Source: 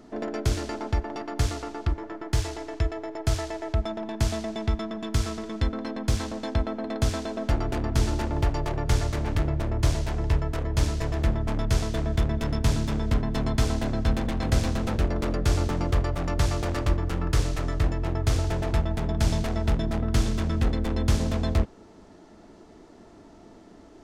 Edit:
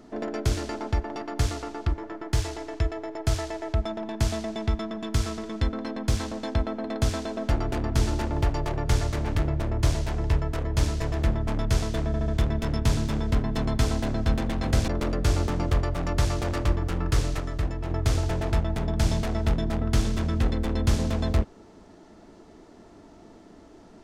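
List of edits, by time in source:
12.07 stutter 0.07 s, 4 plays
14.67–15.09 cut
17.61–18.11 gain -3.5 dB

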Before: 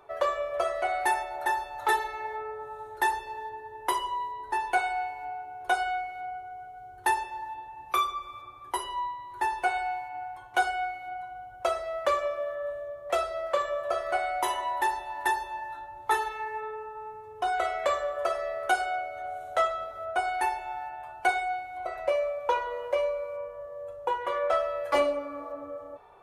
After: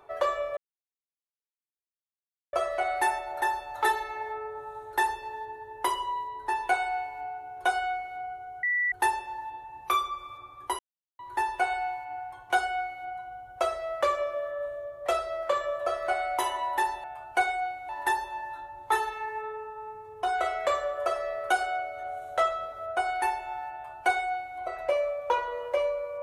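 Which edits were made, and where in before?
0.57 insert silence 1.96 s
6.67–6.96 bleep 1960 Hz -23.5 dBFS
8.83–9.23 mute
20.92–21.77 copy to 15.08

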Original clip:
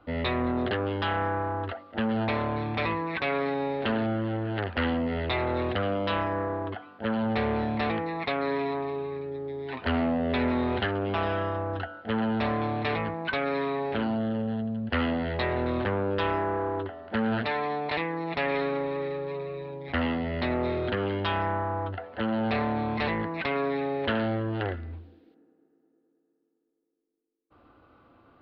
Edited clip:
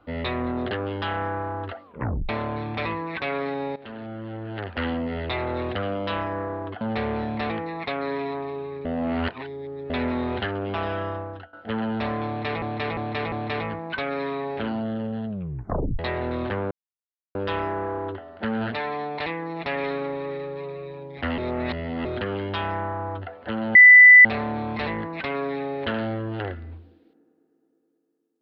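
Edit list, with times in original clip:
1.84 tape stop 0.45 s
3.76–4.91 fade in, from -16.5 dB
6.81–7.21 cut
9.25–10.3 reverse
11.52–11.93 fade out, to -18 dB
12.67–13.02 loop, 4 plays
14.63 tape stop 0.71 s
16.06 insert silence 0.64 s
20.09–20.76 reverse
22.46 add tone 1990 Hz -6 dBFS 0.50 s

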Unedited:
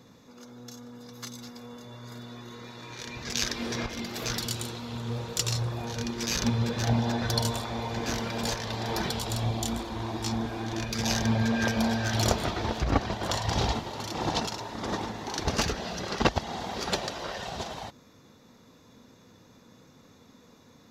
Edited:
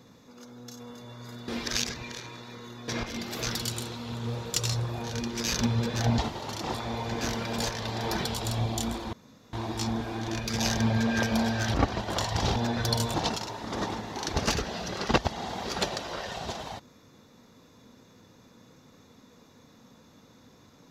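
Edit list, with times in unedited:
0.8–1.63 cut
2.31–3.71 reverse
7.01–7.59 swap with 13.69–14.25
9.98 insert room tone 0.40 s
12.19–12.87 cut

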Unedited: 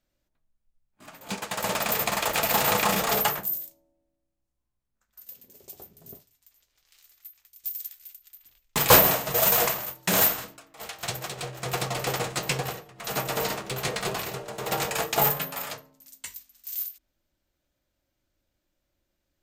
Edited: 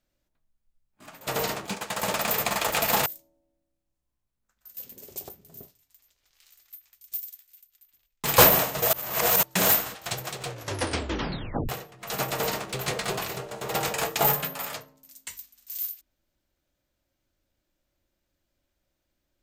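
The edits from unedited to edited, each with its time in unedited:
2.67–3.58 cut
5.3–5.81 gain +7 dB
7.7–8.85 dip -8.5 dB, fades 0.13 s
9.45–9.95 reverse
10.47–10.92 cut
11.44 tape stop 1.22 s
13.28–13.67 copy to 1.27

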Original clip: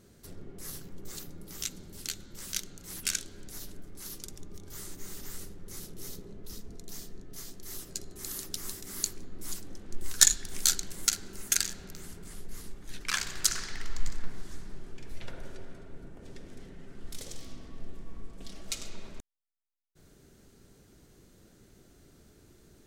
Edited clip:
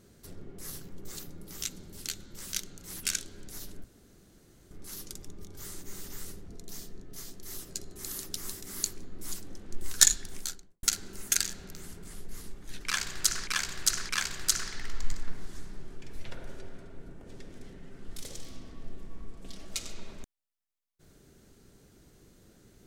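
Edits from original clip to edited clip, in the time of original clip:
3.84 insert room tone 0.87 s
5.61–6.68 cut
10.31–11.03 studio fade out
13.05–13.67 loop, 3 plays

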